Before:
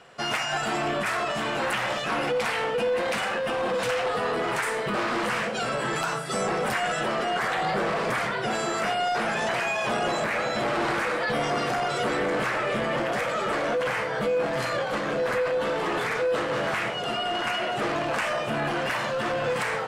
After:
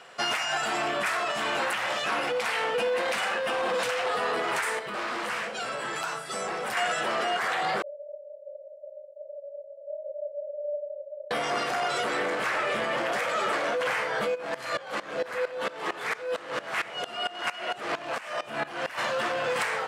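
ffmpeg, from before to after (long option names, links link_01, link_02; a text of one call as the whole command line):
ffmpeg -i in.wav -filter_complex "[0:a]asettb=1/sr,asplit=3[link_01][link_02][link_03];[link_01]atrim=end=7.824[link_04];[link_02]atrim=start=7.82:end=11.31,asetpts=PTS-STARTPTS,afade=type=in:duration=0.004:curve=qsin,afade=type=out:start_time=3.486:duration=0.004:curve=qsin,asuperpass=centerf=580:order=12:qfactor=7.5[link_05];[link_03]atrim=start=11.306[link_06];[link_04][link_05]acrossfade=duration=0.004:curve1=hsin:curve2=qsin[link_07];[link_07][link_06]acrossfade=duration=0.004:curve1=qsin:curve2=hsin,asplit=3[link_08][link_09][link_10];[link_08]afade=type=out:start_time=14.34:duration=0.02[link_11];[link_09]aeval=exprs='val(0)*pow(10,-19*if(lt(mod(-4.4*n/s,1),2*abs(-4.4)/1000),1-mod(-4.4*n/s,1)/(2*abs(-4.4)/1000),(mod(-4.4*n/s,1)-2*abs(-4.4)/1000)/(1-2*abs(-4.4)/1000))/20)':channel_layout=same,afade=type=in:start_time=14.34:duration=0.02,afade=type=out:start_time=18.97:duration=0.02[link_12];[link_10]afade=type=in:start_time=18.97:duration=0.02[link_13];[link_11][link_12][link_13]amix=inputs=3:normalize=0,asplit=3[link_14][link_15][link_16];[link_14]atrim=end=4.792[link_17];[link_15]atrim=start=4.788:end=6.772,asetpts=PTS-STARTPTS,volume=-7dB[link_18];[link_16]atrim=start=6.768[link_19];[link_17][link_18]acrossfade=duration=0.004:curve1=hsin:curve2=hsin[link_20];[link_20][link_19]acrossfade=duration=0.004:curve1=hsin:curve2=hsin,lowshelf=frequency=450:gain=-6,alimiter=limit=-21dB:level=0:latency=1:release=460,lowshelf=frequency=170:gain=-10.5,volume=4dB" out.wav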